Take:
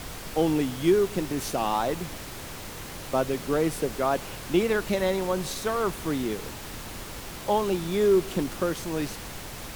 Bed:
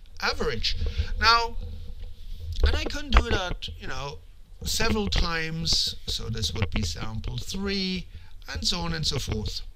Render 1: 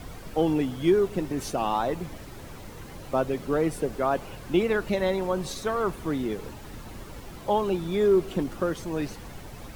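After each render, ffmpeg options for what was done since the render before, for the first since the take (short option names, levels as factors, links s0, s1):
-af "afftdn=nr=10:nf=-39"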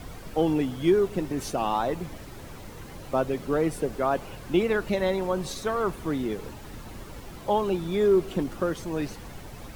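-af anull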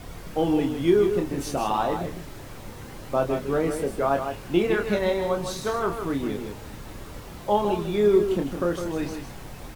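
-filter_complex "[0:a]asplit=2[s0][s1];[s1]adelay=29,volume=0.531[s2];[s0][s2]amix=inputs=2:normalize=0,aecho=1:1:157:0.422"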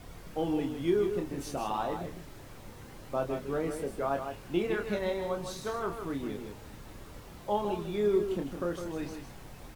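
-af "volume=0.398"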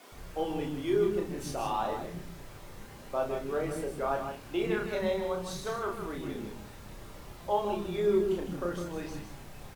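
-filter_complex "[0:a]asplit=2[s0][s1];[s1]adelay=34,volume=0.562[s2];[s0][s2]amix=inputs=2:normalize=0,acrossover=split=280[s3][s4];[s3]adelay=120[s5];[s5][s4]amix=inputs=2:normalize=0"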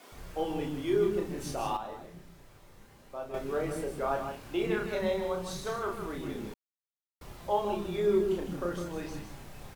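-filter_complex "[0:a]asplit=5[s0][s1][s2][s3][s4];[s0]atrim=end=1.772[s5];[s1]atrim=start=1.768:end=3.342,asetpts=PTS-STARTPTS,volume=0.376[s6];[s2]atrim=start=3.338:end=6.54,asetpts=PTS-STARTPTS,afade=t=out:st=3.198:d=0.004:c=hsin[s7];[s3]atrim=start=6.54:end=7.21,asetpts=PTS-STARTPTS,volume=0[s8];[s4]atrim=start=7.21,asetpts=PTS-STARTPTS,afade=t=in:d=0.004:c=hsin[s9];[s5][s6]acrossfade=d=0.004:c1=hsin:c2=hsin[s10];[s7][s8][s9]concat=n=3:v=0:a=1[s11];[s10][s11]acrossfade=d=0.004:c1=hsin:c2=hsin"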